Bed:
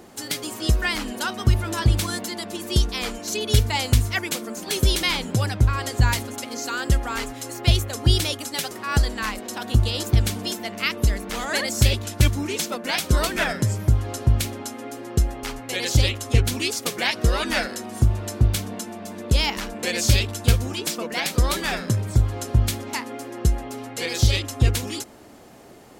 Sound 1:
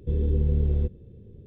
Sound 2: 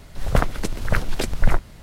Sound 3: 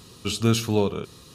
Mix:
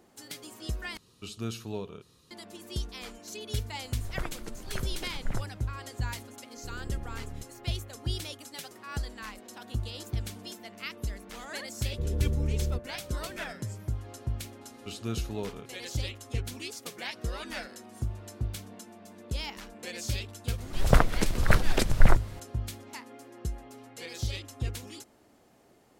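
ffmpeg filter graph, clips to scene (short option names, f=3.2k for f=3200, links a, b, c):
-filter_complex "[3:a]asplit=2[a][b];[2:a]asplit=2[c][d];[1:a]asplit=2[e][f];[0:a]volume=-14.5dB[g];[e]aeval=exprs='max(val(0),0)':c=same[h];[f]aeval=exprs='val(0)+0.01*sin(2*PI*590*n/s)':c=same[i];[g]asplit=2[j][k];[j]atrim=end=0.974[l];[a]atrim=end=1.34,asetpts=PTS-STARTPTS,volume=-14.5dB[m];[k]atrim=start=2.306[n];[c]atrim=end=1.82,asetpts=PTS-STARTPTS,volume=-16dB,afade=t=in:d=0.004:c=hsin,afade=t=out:st=1.816:d=0.004:c=hsin,adelay=3830[o];[h]atrim=end=1.46,asetpts=PTS-STARTPTS,volume=-14dB,afade=t=in:d=0.004:c=hsin,afade=t=out:st=1.456:d=0.004:c=hsin,adelay=6560[p];[i]atrim=end=1.46,asetpts=PTS-STARTPTS,volume=-6dB,afade=t=in:d=0.004:c=hsin,afade=t=out:st=1.456:d=0.004:c=hsin,adelay=11910[q];[b]atrim=end=1.34,asetpts=PTS-STARTPTS,volume=-13.5dB,afade=t=in:d=0.004:c=hsin,afade=t=out:st=1.336:d=0.004:c=hsin,adelay=14610[r];[d]atrim=end=1.82,asetpts=PTS-STARTPTS,volume=-1dB,afade=t=in:d=0.004:c=hsin,afade=t=out:st=1.816:d=0.004:c=hsin,adelay=20580[s];[l][m]acrossfade=d=0.004:c1=hsin:c2=hsin[t];[t][n]acrossfade=d=0.004:c1=hsin:c2=hsin[u];[u][o][p][q][r][s]amix=inputs=6:normalize=0"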